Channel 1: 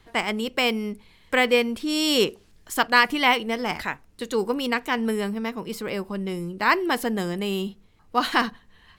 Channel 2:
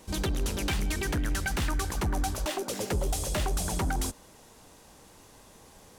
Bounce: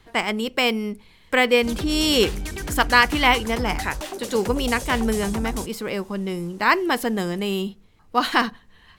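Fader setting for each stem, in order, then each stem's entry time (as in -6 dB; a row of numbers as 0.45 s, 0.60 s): +2.0 dB, -0.5 dB; 0.00 s, 1.55 s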